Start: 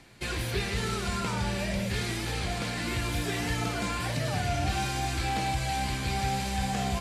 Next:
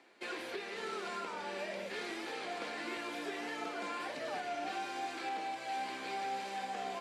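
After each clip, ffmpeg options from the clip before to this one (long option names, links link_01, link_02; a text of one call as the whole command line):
ffmpeg -i in.wav -af "highpass=frequency=310:width=0.5412,highpass=frequency=310:width=1.3066,aemphasis=mode=reproduction:type=75kf,alimiter=level_in=1.5dB:limit=-24dB:level=0:latency=1:release=347,volume=-1.5dB,volume=-4dB" out.wav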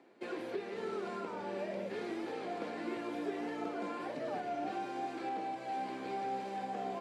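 ffmpeg -i in.wav -af "tiltshelf=frequency=920:gain=8.5,volume=-1dB" out.wav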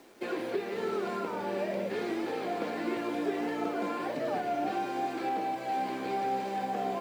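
ffmpeg -i in.wav -af "acrusher=bits=10:mix=0:aa=0.000001,volume=6.5dB" out.wav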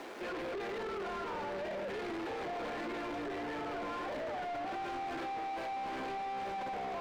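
ffmpeg -i in.wav -filter_complex "[0:a]alimiter=level_in=7.5dB:limit=-24dB:level=0:latency=1,volume=-7.5dB,asplit=2[link_01][link_02];[link_02]highpass=frequency=720:poles=1,volume=23dB,asoftclip=type=tanh:threshold=-31dB[link_03];[link_01][link_03]amix=inputs=2:normalize=0,lowpass=frequency=1900:poles=1,volume=-6dB,asoftclip=type=tanh:threshold=-34dB" out.wav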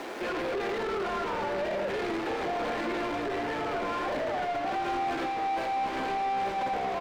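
ffmpeg -i in.wav -af "aecho=1:1:83:0.316,volume=7.5dB" out.wav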